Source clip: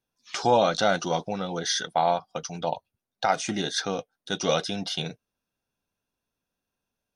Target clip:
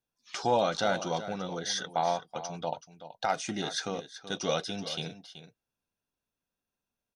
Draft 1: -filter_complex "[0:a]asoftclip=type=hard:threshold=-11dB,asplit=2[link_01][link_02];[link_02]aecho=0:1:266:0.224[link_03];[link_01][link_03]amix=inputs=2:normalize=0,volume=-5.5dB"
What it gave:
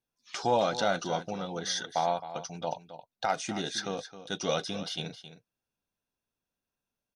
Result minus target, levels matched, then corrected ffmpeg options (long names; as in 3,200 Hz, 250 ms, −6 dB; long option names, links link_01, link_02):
echo 112 ms early
-filter_complex "[0:a]asoftclip=type=hard:threshold=-11dB,asplit=2[link_01][link_02];[link_02]aecho=0:1:378:0.224[link_03];[link_01][link_03]amix=inputs=2:normalize=0,volume=-5.5dB"